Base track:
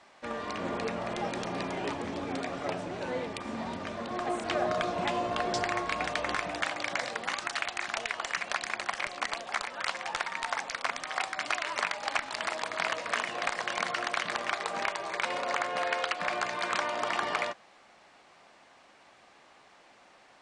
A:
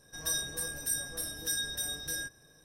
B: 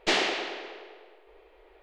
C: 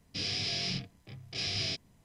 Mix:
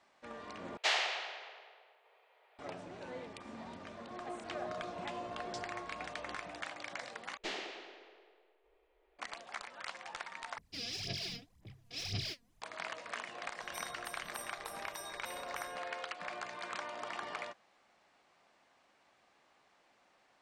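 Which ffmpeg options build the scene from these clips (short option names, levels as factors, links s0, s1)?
-filter_complex "[2:a]asplit=2[s0][s1];[0:a]volume=0.266[s2];[s0]highpass=f=630:w=0.5412,highpass=f=630:w=1.3066[s3];[3:a]aphaser=in_gain=1:out_gain=1:delay=4.3:decay=0.77:speed=1.9:type=sinusoidal[s4];[s2]asplit=4[s5][s6][s7][s8];[s5]atrim=end=0.774[s9];[s3]atrim=end=1.82,asetpts=PTS-STARTPTS,volume=0.531[s10];[s6]atrim=start=2.586:end=7.374[s11];[s1]atrim=end=1.82,asetpts=PTS-STARTPTS,volume=0.158[s12];[s7]atrim=start=9.186:end=10.584[s13];[s4]atrim=end=2.04,asetpts=PTS-STARTPTS,volume=0.282[s14];[s8]atrim=start=12.616[s15];[1:a]atrim=end=2.64,asetpts=PTS-STARTPTS,volume=0.15,afade=t=in:d=0.004:c=hsin,afade=t=out:st=2.636:d=0.004:c=hsin,adelay=594468S[s16];[s9][s10]acrossfade=d=0.004:c1=hsin:c2=hsin[s17];[s17][s11]acrossfade=d=0.004:c1=hsin:c2=hsin[s18];[s18][s12]acrossfade=d=0.004:c1=hsin:c2=hsin[s19];[s19][s13]acrossfade=d=0.004:c1=hsin:c2=hsin[s20];[s20][s14]acrossfade=d=0.004:c1=hsin:c2=hsin[s21];[s21][s15]acrossfade=d=0.004:c1=hsin:c2=hsin[s22];[s22][s16]amix=inputs=2:normalize=0"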